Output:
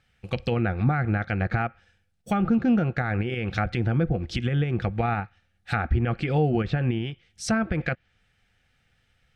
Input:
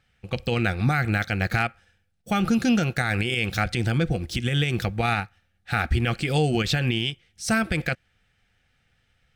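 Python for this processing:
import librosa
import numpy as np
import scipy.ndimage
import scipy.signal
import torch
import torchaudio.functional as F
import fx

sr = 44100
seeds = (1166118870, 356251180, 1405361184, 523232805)

y = fx.env_lowpass_down(x, sr, base_hz=1300.0, full_db=-20.0)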